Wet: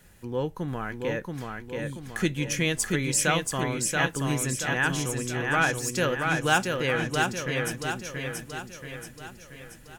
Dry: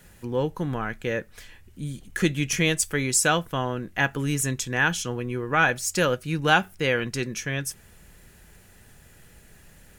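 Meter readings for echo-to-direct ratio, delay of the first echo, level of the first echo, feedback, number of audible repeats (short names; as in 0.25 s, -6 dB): -2.5 dB, 0.68 s, -3.5 dB, 50%, 6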